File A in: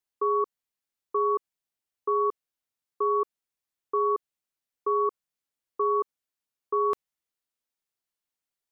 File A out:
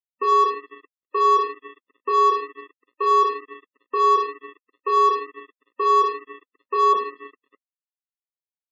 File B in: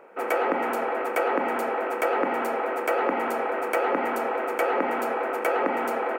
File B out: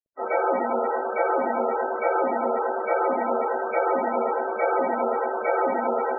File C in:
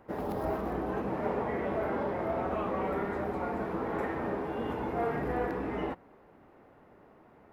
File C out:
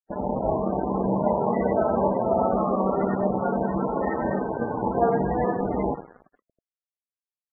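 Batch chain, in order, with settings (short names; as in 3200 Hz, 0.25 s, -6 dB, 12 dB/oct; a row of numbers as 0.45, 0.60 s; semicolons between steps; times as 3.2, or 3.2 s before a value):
two-slope reverb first 0.45 s, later 4.6 s, from -18 dB, DRR -6 dB; crossover distortion -32.5 dBFS; loudest bins only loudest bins 32; normalise peaks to -9 dBFS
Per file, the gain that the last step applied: +3.5, -4.0, +5.5 dB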